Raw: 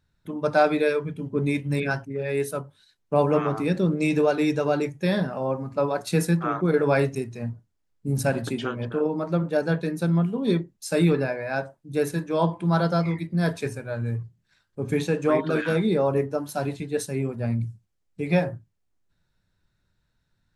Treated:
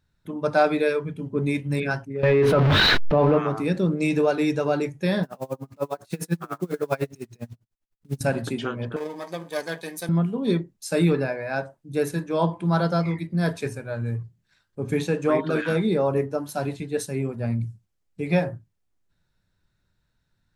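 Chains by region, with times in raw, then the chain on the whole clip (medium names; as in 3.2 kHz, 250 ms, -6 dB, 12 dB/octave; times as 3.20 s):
2.23–3.38 s: jump at every zero crossing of -32 dBFS + distance through air 330 m + level flattener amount 100%
5.23–8.21 s: block-companded coder 5-bit + logarithmic tremolo 10 Hz, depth 31 dB
8.96–10.09 s: partial rectifier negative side -7 dB + tilt EQ +4 dB/octave + comb of notches 1.4 kHz
whole clip: none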